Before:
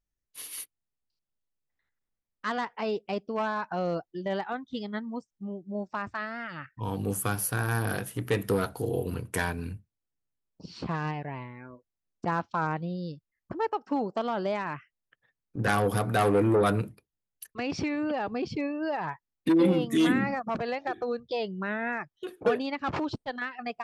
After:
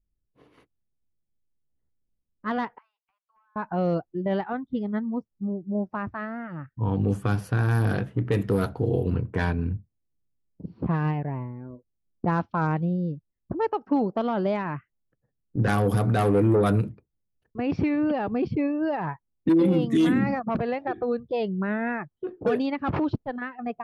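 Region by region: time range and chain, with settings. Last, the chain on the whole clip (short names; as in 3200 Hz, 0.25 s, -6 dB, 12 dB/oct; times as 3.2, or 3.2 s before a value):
2.78–3.56 steep high-pass 1100 Hz 48 dB/oct + compressor, threshold -53 dBFS
whole clip: low-pass opened by the level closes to 500 Hz, open at -21.5 dBFS; low shelf 410 Hz +10 dB; limiter -14 dBFS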